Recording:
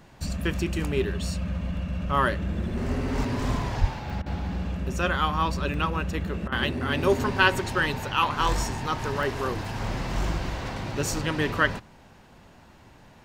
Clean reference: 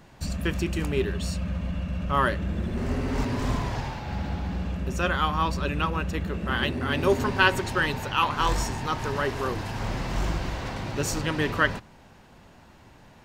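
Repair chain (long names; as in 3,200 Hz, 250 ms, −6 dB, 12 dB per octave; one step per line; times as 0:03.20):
0:03.80–0:03.92: high-pass filter 140 Hz 24 dB per octave
repair the gap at 0:01.77/0:04.10/0:05.74/0:09.23/0:09.65, 1.3 ms
repair the gap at 0:04.22/0:06.48, 40 ms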